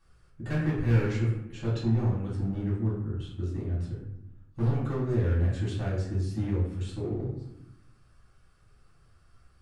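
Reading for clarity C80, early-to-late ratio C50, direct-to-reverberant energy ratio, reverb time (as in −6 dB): 6.0 dB, 3.0 dB, −8.0 dB, 0.85 s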